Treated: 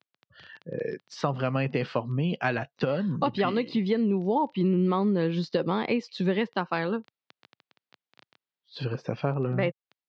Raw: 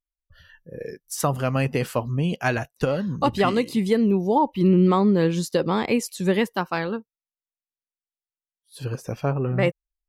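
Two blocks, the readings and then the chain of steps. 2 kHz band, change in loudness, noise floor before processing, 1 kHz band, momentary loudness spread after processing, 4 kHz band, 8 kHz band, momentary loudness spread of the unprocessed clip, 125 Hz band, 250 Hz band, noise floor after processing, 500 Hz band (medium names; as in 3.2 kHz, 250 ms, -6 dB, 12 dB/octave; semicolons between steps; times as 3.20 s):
-4.0 dB, -5.0 dB, under -85 dBFS, -5.0 dB, 9 LU, -4.0 dB, under -15 dB, 14 LU, -4.5 dB, -5.0 dB, under -85 dBFS, -4.5 dB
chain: crackle 13 per s -33 dBFS; compression 2.5:1, threshold -33 dBFS, peak gain reduction 12.5 dB; steep low-pass 4.6 kHz 36 dB/octave; level rider gain up to 5.5 dB; high-pass 120 Hz 24 dB/octave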